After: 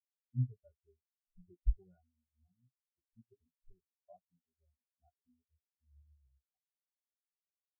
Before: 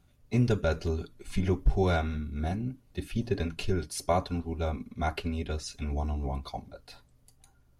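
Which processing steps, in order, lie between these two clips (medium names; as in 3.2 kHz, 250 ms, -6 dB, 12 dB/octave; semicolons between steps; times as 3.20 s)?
doubling 17 ms -7.5 dB; vibrato 0.58 Hz 40 cents; spectral contrast expander 4:1; trim -6.5 dB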